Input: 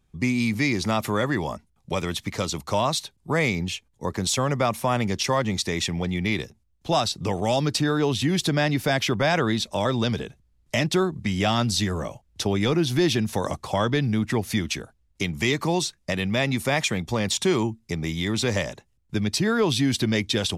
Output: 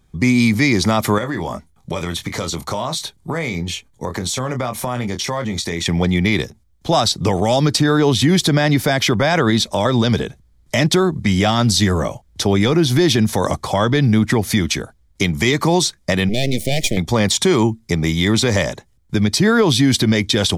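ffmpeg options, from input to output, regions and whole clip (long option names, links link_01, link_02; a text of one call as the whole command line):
ffmpeg -i in.wav -filter_complex "[0:a]asettb=1/sr,asplit=3[link_01][link_02][link_03];[link_01]atrim=end=1.184[link_04];[link_02]atrim=start=1.18:end=5.86,asetpts=PTS-STARTPTS,afade=type=in:duration=0.004:curve=qsin,afade=type=out:start_time=4.676:duration=0.004:curve=qsin,bandreject=frequency=5100:width=19,asplit=2[link_05][link_06];[link_06]adelay=24,volume=-8.5dB[link_07];[link_05][link_07]amix=inputs=2:normalize=0,atrim=end_sample=206388,acompressor=threshold=-30dB:ratio=4:attack=3.2:release=140:knee=1:detection=peak[link_08];[link_03]atrim=start=5.856[link_09];[link_04][link_08]acrossfade=duration=0.004:curve1=hsin:curve2=qsin[link_10];[link_10][link_09]acrossfade=duration=0.004:curve1=qsin:curve2=hsin,asettb=1/sr,asplit=3[link_11][link_12][link_13];[link_11]atrim=end=16.294[link_14];[link_12]atrim=start=16.29:end=16.97,asetpts=PTS-STARTPTS,afade=type=in:duration=0.004:curve=qsin,afade=type=out:start_time=0.676:duration=0.004:curve=qsin,aeval=exprs='max(val(0),0)':channel_layout=same,asuperstop=centerf=1200:order=8:qfactor=0.81[link_15];[link_13]atrim=start=16.966[link_16];[link_14][link_15]acrossfade=duration=0.004:curve1=hsin:curve2=qsin[link_17];[link_17][link_16]acrossfade=duration=0.004:curve1=qsin:curve2=hsin,bandreject=frequency=2700:width=8,alimiter=level_in=15dB:limit=-1dB:release=50:level=0:latency=1,volume=-5dB" out.wav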